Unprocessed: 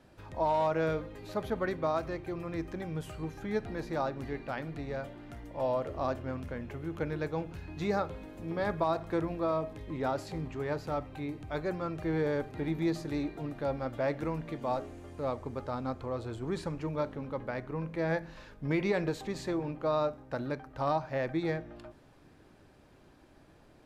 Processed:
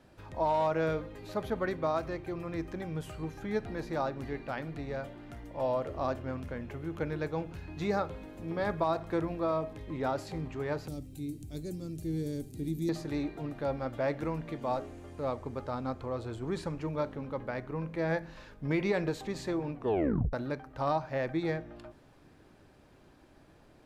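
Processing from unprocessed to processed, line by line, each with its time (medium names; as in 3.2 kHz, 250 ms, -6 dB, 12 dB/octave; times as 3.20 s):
10.88–12.89 s: FFT filter 290 Hz 0 dB, 920 Hz -25 dB, 1.4 kHz -24 dB, 8.6 kHz +14 dB
19.74 s: tape stop 0.59 s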